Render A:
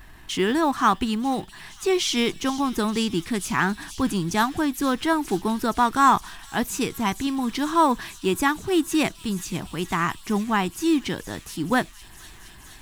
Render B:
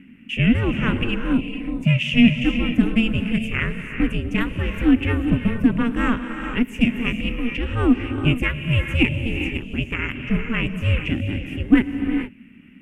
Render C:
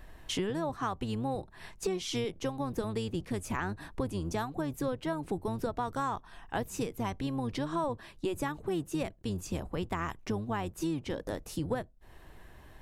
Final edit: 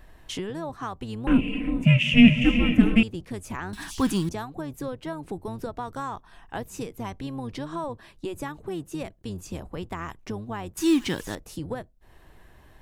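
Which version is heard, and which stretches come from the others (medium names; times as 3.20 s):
C
1.27–3.03 s: from B
3.73–4.29 s: from A
10.77–11.35 s: from A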